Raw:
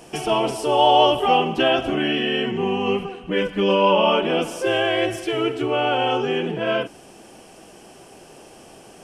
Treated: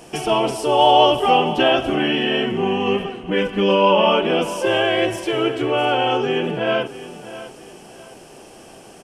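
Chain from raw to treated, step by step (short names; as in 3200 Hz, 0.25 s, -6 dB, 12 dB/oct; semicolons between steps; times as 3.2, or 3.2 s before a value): feedback echo 0.657 s, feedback 33%, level -15 dB; gain +2 dB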